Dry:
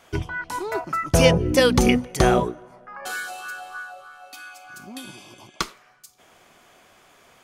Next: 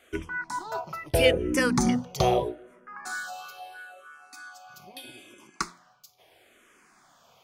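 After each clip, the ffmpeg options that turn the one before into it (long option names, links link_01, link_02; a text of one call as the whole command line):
ffmpeg -i in.wav -filter_complex "[0:a]lowshelf=frequency=83:gain=-7,bandreject=frequency=87.61:width_type=h:width=4,bandreject=frequency=175.22:width_type=h:width=4,bandreject=frequency=262.83:width_type=h:width=4,bandreject=frequency=350.44:width_type=h:width=4,bandreject=frequency=438.05:width_type=h:width=4,bandreject=frequency=525.66:width_type=h:width=4,bandreject=frequency=613.27:width_type=h:width=4,bandreject=frequency=700.88:width_type=h:width=4,bandreject=frequency=788.49:width_type=h:width=4,bandreject=frequency=876.1:width_type=h:width=4,bandreject=frequency=963.71:width_type=h:width=4,bandreject=frequency=1051.32:width_type=h:width=4,asplit=2[link_01][link_02];[link_02]afreqshift=-0.77[link_03];[link_01][link_03]amix=inputs=2:normalize=1,volume=-2dB" out.wav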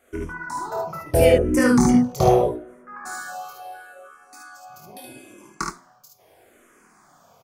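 ffmpeg -i in.wav -filter_complex "[0:a]equalizer=frequency=3200:width=1:gain=-12,dynaudnorm=framelen=140:gausssize=3:maxgain=3.5dB,asplit=2[link_01][link_02];[link_02]aecho=0:1:24|53|73:0.596|0.501|0.708[link_03];[link_01][link_03]amix=inputs=2:normalize=0" out.wav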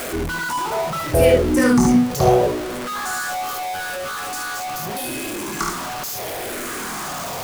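ffmpeg -i in.wav -af "aeval=exprs='val(0)+0.5*0.075*sgn(val(0))':channel_layout=same" out.wav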